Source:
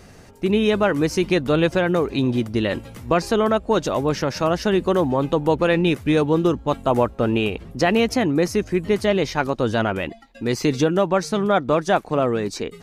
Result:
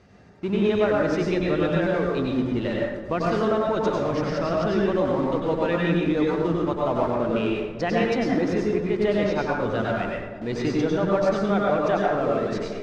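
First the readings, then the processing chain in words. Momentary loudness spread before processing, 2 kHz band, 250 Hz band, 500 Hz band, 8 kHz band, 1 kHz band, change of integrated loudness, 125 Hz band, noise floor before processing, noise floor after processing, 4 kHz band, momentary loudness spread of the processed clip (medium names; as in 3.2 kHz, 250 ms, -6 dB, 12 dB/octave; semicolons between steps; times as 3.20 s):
4 LU, -4.0 dB, -3.0 dB, -2.5 dB, under -10 dB, -3.5 dB, -3.0 dB, -3.5 dB, -45 dBFS, -35 dBFS, -7.5 dB, 5 LU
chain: high-pass 54 Hz 12 dB/octave; reverb removal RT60 1.8 s; in parallel at -10.5 dB: Schmitt trigger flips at -30.5 dBFS; on the sum: distance through air 140 m; on a send: two-band feedback delay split 690 Hz, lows 401 ms, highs 113 ms, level -14 dB; on the sum: plate-style reverb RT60 0.92 s, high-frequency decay 0.5×, pre-delay 85 ms, DRR -3 dB; trim -8 dB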